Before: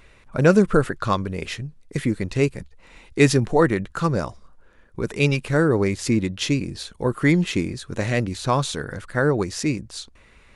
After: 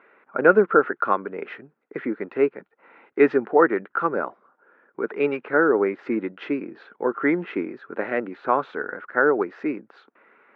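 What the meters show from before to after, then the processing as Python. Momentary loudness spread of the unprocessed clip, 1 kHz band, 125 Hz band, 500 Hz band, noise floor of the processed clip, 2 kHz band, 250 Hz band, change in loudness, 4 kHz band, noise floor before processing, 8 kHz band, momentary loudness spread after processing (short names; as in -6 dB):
13 LU, +3.0 dB, -19.5 dB, +1.5 dB, -71 dBFS, +1.5 dB, -4.0 dB, -1.0 dB, under -15 dB, -52 dBFS, under -40 dB, 14 LU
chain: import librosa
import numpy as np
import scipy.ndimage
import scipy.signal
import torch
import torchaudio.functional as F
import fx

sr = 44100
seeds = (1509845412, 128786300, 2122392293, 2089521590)

y = fx.cabinet(x, sr, low_hz=260.0, low_slope=24, high_hz=2100.0, hz=(420.0, 810.0, 1400.0), db=(4, 4, 9))
y = F.gain(torch.from_numpy(y), -1.5).numpy()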